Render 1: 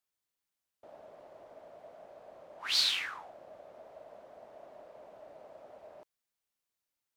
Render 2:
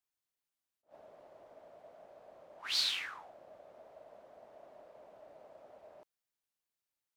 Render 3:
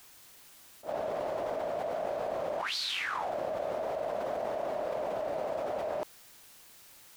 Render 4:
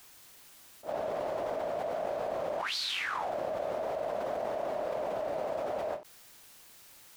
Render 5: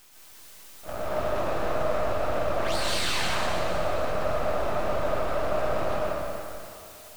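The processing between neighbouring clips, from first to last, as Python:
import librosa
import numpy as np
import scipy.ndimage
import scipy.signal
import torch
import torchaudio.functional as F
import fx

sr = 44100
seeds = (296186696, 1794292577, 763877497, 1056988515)

y1 = fx.attack_slew(x, sr, db_per_s=300.0)
y1 = F.gain(torch.from_numpy(y1), -4.0).numpy()
y2 = fx.env_flatten(y1, sr, amount_pct=100)
y2 = F.gain(torch.from_numpy(y2), -4.5).numpy()
y3 = fx.end_taper(y2, sr, db_per_s=210.0)
y4 = np.maximum(y3, 0.0)
y4 = fx.quant_dither(y4, sr, seeds[0], bits=10, dither='none')
y4 = fx.rev_plate(y4, sr, seeds[1], rt60_s=2.6, hf_ratio=0.95, predelay_ms=110, drr_db=-6.0)
y4 = F.gain(torch.from_numpy(y4), 3.5).numpy()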